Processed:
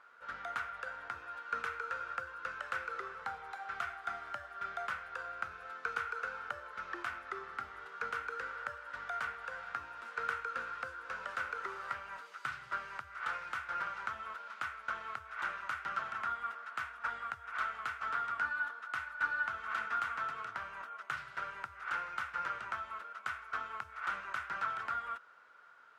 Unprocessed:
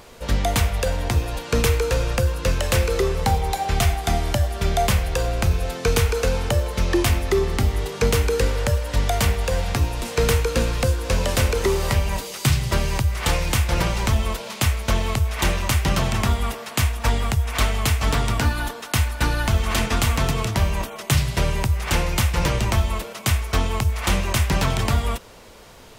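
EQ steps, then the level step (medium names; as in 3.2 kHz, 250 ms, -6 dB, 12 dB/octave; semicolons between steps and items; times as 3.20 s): band-pass filter 1.4 kHz, Q 10; +1.0 dB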